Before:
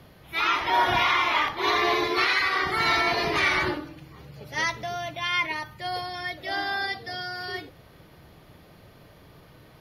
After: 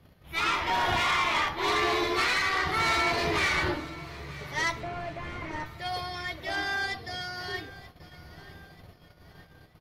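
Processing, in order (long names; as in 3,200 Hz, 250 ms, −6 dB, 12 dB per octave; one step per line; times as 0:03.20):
0:04.80–0:05.66: linear delta modulator 16 kbit/s, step −41.5 dBFS
low-shelf EQ 100 Hz +9.5 dB
tube saturation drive 21 dB, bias 0.5
double-tracking delay 12 ms −9 dB
repeating echo 931 ms, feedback 58%, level −18.5 dB
noise gate −48 dBFS, range −10 dB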